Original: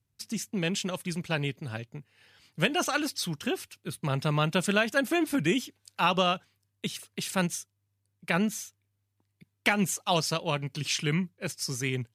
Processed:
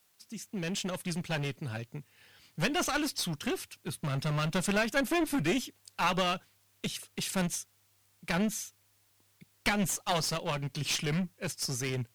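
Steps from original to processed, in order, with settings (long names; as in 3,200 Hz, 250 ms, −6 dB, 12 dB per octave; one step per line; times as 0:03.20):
fade in at the beginning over 1.02 s
background noise white −69 dBFS
asymmetric clip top −30 dBFS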